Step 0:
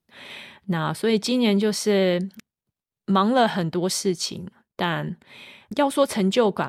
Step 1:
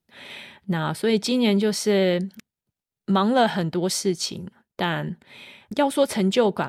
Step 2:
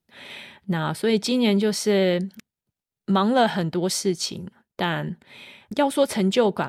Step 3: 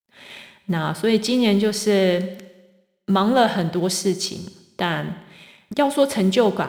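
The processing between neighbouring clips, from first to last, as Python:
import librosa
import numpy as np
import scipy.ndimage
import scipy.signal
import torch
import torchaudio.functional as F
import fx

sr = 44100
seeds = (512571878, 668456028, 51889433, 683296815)

y1 = fx.notch(x, sr, hz=1100.0, q=9.9)
y2 = y1
y3 = fx.law_mismatch(y2, sr, coded='A')
y3 = fx.rev_schroeder(y3, sr, rt60_s=1.1, comb_ms=32, drr_db=13.0)
y3 = y3 * 10.0 ** (2.5 / 20.0)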